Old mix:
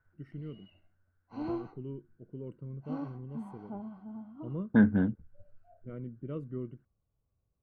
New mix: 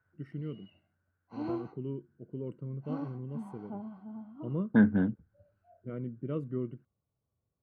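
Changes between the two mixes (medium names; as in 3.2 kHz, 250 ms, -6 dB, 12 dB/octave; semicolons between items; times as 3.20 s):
first voice +4.0 dB; master: add high-pass 98 Hz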